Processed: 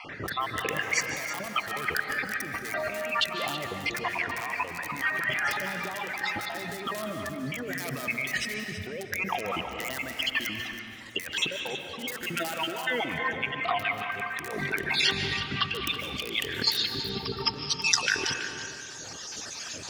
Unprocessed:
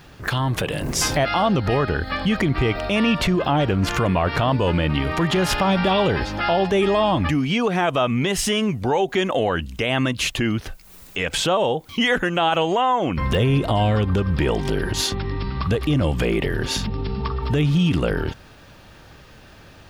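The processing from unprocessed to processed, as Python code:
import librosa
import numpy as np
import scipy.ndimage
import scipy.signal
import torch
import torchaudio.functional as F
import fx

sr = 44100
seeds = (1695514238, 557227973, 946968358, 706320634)

p1 = fx.spec_dropout(x, sr, seeds[0], share_pct=38)
p2 = fx.filter_sweep_lowpass(p1, sr, from_hz=2000.0, to_hz=6400.0, start_s=14.62, end_s=18.26, q=5.6)
p3 = fx.dereverb_blind(p2, sr, rt60_s=1.5)
p4 = (np.mod(10.0 ** (11.5 / 20.0) * p3 + 1.0, 2.0) - 1.0) / 10.0 ** (11.5 / 20.0)
p5 = p3 + (p4 * librosa.db_to_amplitude(-5.0))
p6 = fx.rotary(p5, sr, hz=0.6)
p7 = fx.over_compress(p6, sr, threshold_db=-30.0, ratio=-1.0)
p8 = scipy.signal.sosfilt(scipy.signal.butter(2, 110.0, 'highpass', fs=sr, output='sos'), p7)
p9 = fx.bass_treble(p8, sr, bass_db=-4, treble_db=15)
p10 = fx.hum_notches(p9, sr, base_hz=60, count=3)
p11 = fx.rev_freeverb(p10, sr, rt60_s=2.4, hf_ratio=0.55, predelay_ms=105, drr_db=5.5)
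p12 = fx.dynamic_eq(p11, sr, hz=7800.0, q=0.74, threshold_db=-40.0, ratio=4.0, max_db=-5)
p13 = p12 + fx.echo_feedback(p12, sr, ms=326, feedback_pct=16, wet_db=-12.0, dry=0)
y = p13 * librosa.db_to_amplitude(-3.5)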